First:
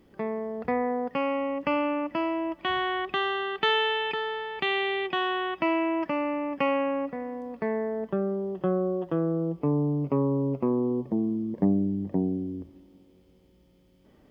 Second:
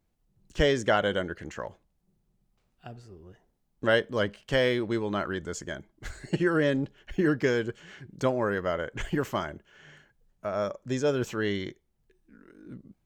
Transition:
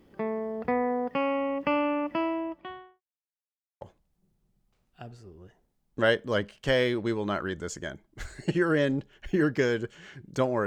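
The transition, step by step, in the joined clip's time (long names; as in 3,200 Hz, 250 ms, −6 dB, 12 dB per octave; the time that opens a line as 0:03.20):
first
0:02.13–0:03.02: fade out and dull
0:03.02–0:03.81: silence
0:03.81: continue with second from 0:01.66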